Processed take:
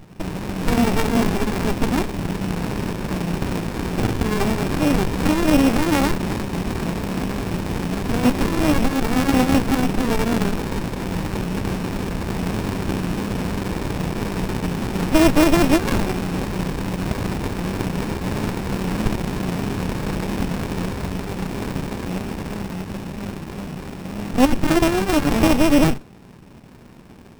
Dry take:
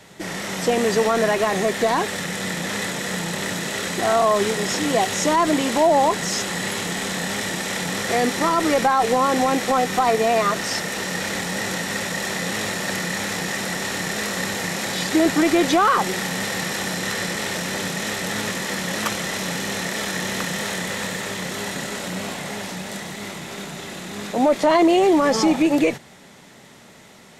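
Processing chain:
samples sorted by size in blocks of 16 samples
dynamic equaliser 260 Hz, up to +5 dB, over −34 dBFS, Q 2.6
windowed peak hold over 65 samples
level +6 dB

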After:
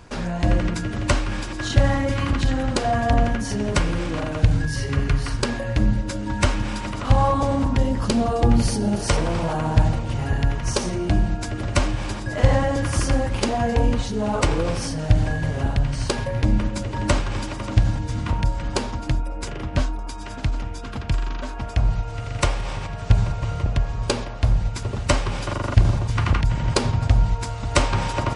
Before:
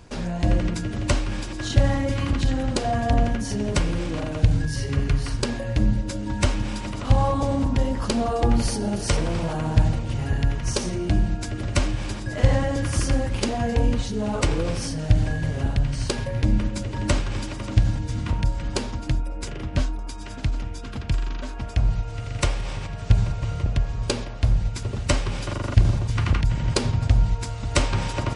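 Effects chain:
parametric band 1,300 Hz +5 dB 1.6 octaves, from 0:07.78 140 Hz, from 0:08.95 950 Hz
level +1 dB

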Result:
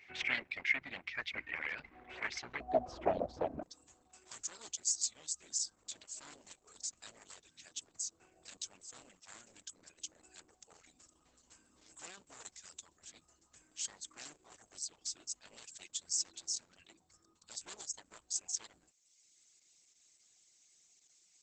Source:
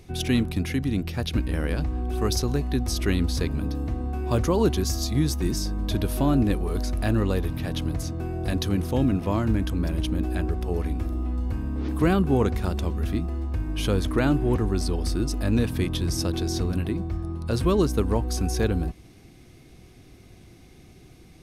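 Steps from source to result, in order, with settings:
wavefolder on the positive side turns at −22.5 dBFS
reverb reduction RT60 0.94 s
resonant band-pass 2,100 Hz, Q 5.7, from 0:02.60 660 Hz, from 0:03.63 7,400 Hz
level +9.5 dB
Opus 10 kbit/s 48,000 Hz

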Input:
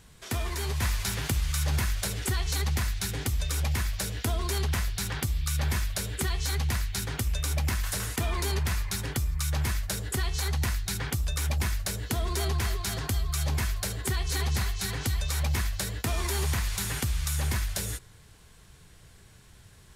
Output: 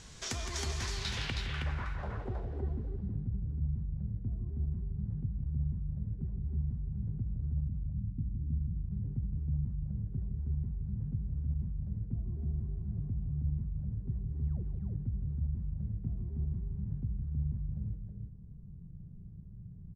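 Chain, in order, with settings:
0:07.66–0:08.77: Chebyshev band-stop filter 300–8,100 Hz, order 4
downward compressor 3 to 1, threshold −41 dBFS, peak gain reduction 13 dB
0:14.39–0:14.63: sound drawn into the spectrogram fall 300–6,900 Hz −40 dBFS
low-pass filter sweep 6,300 Hz → 170 Hz, 0:00.77–0:03.11
multi-tap delay 164/319 ms −9/−4 dB
four-comb reverb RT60 2.6 s, combs from 27 ms, DRR 16 dB
level +2 dB

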